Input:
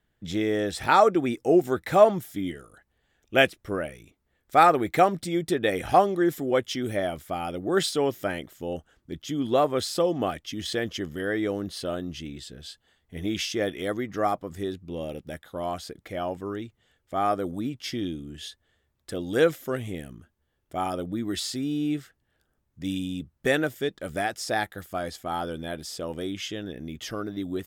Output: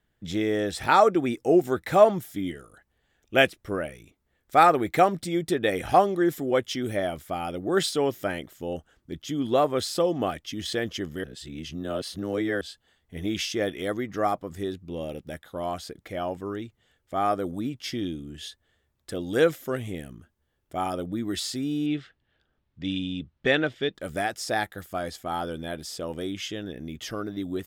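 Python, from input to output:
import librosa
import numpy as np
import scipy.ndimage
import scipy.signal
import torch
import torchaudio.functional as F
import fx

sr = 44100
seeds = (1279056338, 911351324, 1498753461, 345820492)

y = fx.lowpass_res(x, sr, hz=3500.0, q=1.7, at=(21.86, 23.95))
y = fx.edit(y, sr, fx.reverse_span(start_s=11.24, length_s=1.37), tone=tone)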